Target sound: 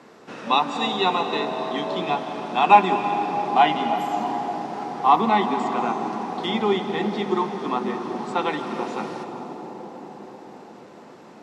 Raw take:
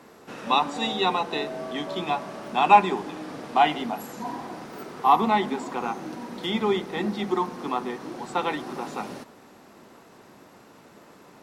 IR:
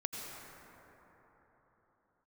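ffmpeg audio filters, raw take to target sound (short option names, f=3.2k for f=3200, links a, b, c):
-filter_complex "[0:a]highpass=110,lowpass=6.7k,asplit=2[a][b];[1:a]atrim=start_sample=2205,asetrate=22932,aresample=44100[c];[b][c]afir=irnorm=-1:irlink=0,volume=-6dB[d];[a][d]amix=inputs=2:normalize=0,volume=-2dB"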